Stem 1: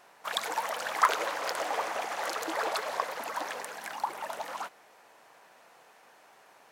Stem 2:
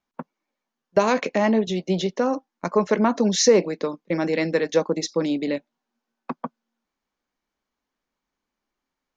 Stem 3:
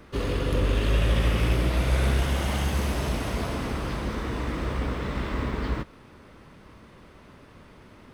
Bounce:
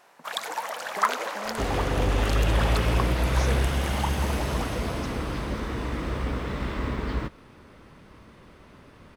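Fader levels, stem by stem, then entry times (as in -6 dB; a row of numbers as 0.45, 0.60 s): +0.5, -20.0, -0.5 dB; 0.00, 0.00, 1.45 s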